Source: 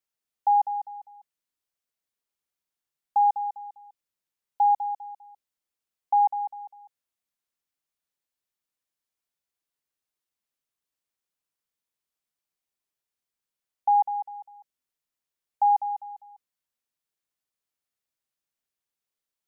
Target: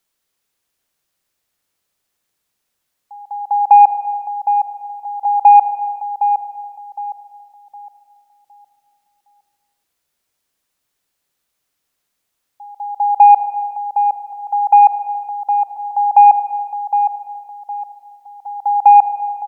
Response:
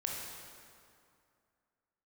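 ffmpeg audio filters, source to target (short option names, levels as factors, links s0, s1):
-filter_complex "[0:a]areverse,acontrast=80,asplit=2[s0][s1];[s1]adelay=762,lowpass=f=960:p=1,volume=0.501,asplit=2[s2][s3];[s3]adelay=762,lowpass=f=960:p=1,volume=0.39,asplit=2[s4][s5];[s5]adelay=762,lowpass=f=960:p=1,volume=0.39,asplit=2[s6][s7];[s7]adelay=762,lowpass=f=960:p=1,volume=0.39,asplit=2[s8][s9];[s9]adelay=762,lowpass=f=960:p=1,volume=0.39[s10];[s0][s2][s4][s6][s8][s10]amix=inputs=6:normalize=0,asplit=2[s11][s12];[1:a]atrim=start_sample=2205,afade=t=out:st=0.34:d=0.01,atrim=end_sample=15435,asetrate=29988,aresample=44100[s13];[s12][s13]afir=irnorm=-1:irlink=0,volume=0.282[s14];[s11][s14]amix=inputs=2:normalize=0,volume=1.88"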